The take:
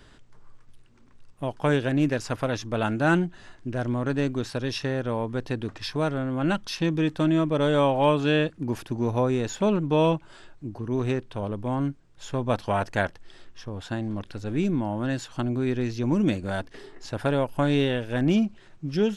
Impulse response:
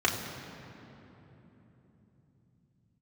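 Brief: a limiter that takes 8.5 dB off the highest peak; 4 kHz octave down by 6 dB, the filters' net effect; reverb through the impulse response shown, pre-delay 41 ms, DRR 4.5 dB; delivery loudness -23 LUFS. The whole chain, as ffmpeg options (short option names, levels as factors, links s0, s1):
-filter_complex "[0:a]equalizer=f=4000:t=o:g=-8,alimiter=limit=0.126:level=0:latency=1,asplit=2[s0][s1];[1:a]atrim=start_sample=2205,adelay=41[s2];[s1][s2]afir=irnorm=-1:irlink=0,volume=0.141[s3];[s0][s3]amix=inputs=2:normalize=0,volume=1.58"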